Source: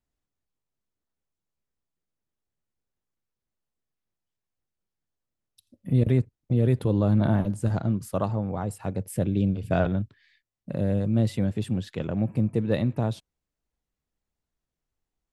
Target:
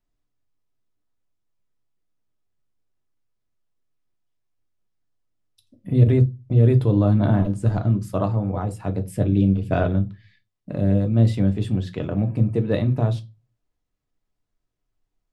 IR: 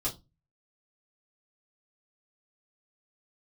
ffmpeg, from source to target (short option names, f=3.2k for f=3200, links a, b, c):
-filter_complex "[0:a]highshelf=f=9.1k:g=-11.5,asplit=2[a][b];[1:a]atrim=start_sample=2205[c];[b][c]afir=irnorm=-1:irlink=0,volume=-7.5dB[d];[a][d]amix=inputs=2:normalize=0"